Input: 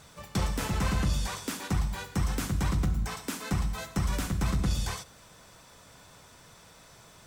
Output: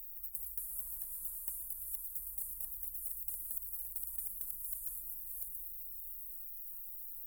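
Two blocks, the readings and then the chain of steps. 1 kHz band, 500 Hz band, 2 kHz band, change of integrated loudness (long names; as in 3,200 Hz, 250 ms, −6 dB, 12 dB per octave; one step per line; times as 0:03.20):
below −35 dB, below −35 dB, below −40 dB, −8.5 dB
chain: feedback delay that plays each chunk backwards 343 ms, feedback 44%, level −2 dB
inverse Chebyshev band-stop filter 100–5,900 Hz, stop band 70 dB
every bin compressed towards the loudest bin 10 to 1
level +15.5 dB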